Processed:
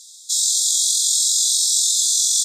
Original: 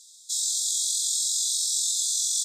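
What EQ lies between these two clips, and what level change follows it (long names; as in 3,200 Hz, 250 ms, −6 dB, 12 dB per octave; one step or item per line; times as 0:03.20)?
notch filter 8,000 Hz, Q 27
+8.5 dB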